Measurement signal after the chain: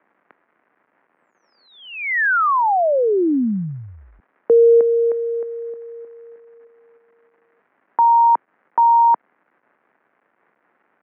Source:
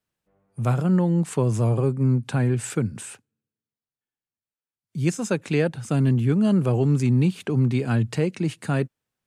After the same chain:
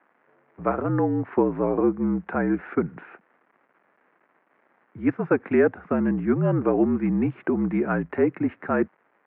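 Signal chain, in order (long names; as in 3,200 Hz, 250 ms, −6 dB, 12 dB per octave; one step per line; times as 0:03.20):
surface crackle 530 per second −47 dBFS
single-sideband voice off tune −54 Hz 270–2,000 Hz
level +5 dB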